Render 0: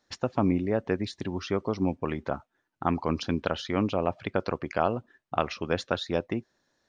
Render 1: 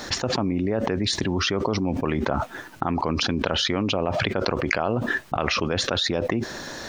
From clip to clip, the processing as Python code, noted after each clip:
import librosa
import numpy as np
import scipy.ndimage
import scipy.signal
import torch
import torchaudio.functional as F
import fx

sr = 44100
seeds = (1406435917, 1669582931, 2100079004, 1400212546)

y = fx.env_flatten(x, sr, amount_pct=100)
y = y * 10.0 ** (-2.0 / 20.0)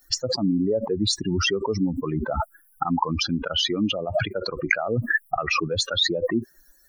y = fx.bin_expand(x, sr, power=3.0)
y = y * 10.0 ** (7.5 / 20.0)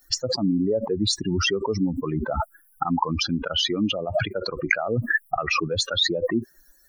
y = x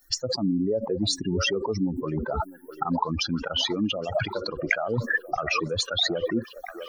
y = fx.echo_stepped(x, sr, ms=652, hz=500.0, octaves=0.7, feedback_pct=70, wet_db=-8.5)
y = y * 10.0 ** (-2.5 / 20.0)